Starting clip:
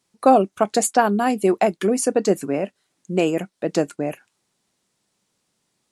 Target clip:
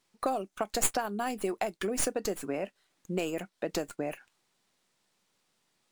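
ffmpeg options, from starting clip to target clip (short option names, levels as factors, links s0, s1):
-filter_complex "[0:a]lowshelf=f=470:g=-8,acrossover=split=4600[s0][s1];[s0]acompressor=threshold=0.0355:ratio=6[s2];[s1]aeval=exprs='max(val(0),0)':c=same[s3];[s2][s3]amix=inputs=2:normalize=0"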